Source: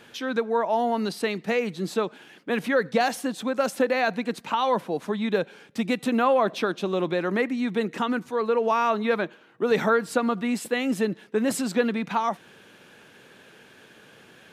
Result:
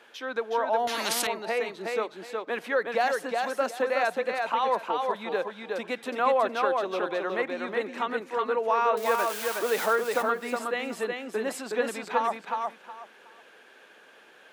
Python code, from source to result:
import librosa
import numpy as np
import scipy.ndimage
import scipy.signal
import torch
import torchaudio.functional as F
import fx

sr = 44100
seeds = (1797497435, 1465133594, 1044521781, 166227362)

y = fx.crossing_spikes(x, sr, level_db=-18.0, at=(8.97, 9.86))
y = scipy.signal.sosfilt(scipy.signal.butter(2, 530.0, 'highpass', fs=sr, output='sos'), y)
y = fx.high_shelf(y, sr, hz=2500.0, db=-8.5)
y = fx.echo_feedback(y, sr, ms=367, feedback_pct=22, wet_db=-3.5)
y = fx.spectral_comp(y, sr, ratio=4.0, at=(0.87, 1.27))